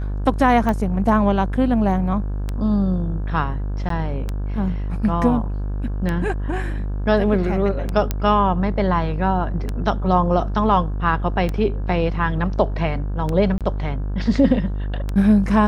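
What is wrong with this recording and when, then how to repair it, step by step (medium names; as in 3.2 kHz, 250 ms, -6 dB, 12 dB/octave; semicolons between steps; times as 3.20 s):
buzz 50 Hz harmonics 34 -24 dBFS
tick 33 1/3 rpm -12 dBFS
3.89–3.90 s: dropout 13 ms
8.11 s: pop -7 dBFS
13.58–13.61 s: dropout 27 ms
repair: de-click; de-hum 50 Hz, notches 34; interpolate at 3.89 s, 13 ms; interpolate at 13.58 s, 27 ms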